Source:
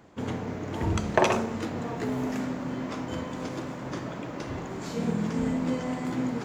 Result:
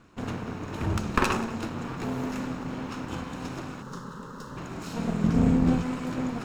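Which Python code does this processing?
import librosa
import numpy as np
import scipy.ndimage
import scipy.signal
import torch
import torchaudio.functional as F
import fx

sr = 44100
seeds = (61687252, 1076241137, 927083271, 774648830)

y = fx.lower_of_two(x, sr, delay_ms=0.75)
y = fx.fixed_phaser(y, sr, hz=470.0, stages=8, at=(3.82, 4.57))
y = fx.low_shelf(y, sr, hz=320.0, db=11.5, at=(5.24, 5.82))
y = y + 10.0 ** (-18.0 / 20.0) * np.pad(y, (int(183 * sr / 1000.0), 0))[:len(y)]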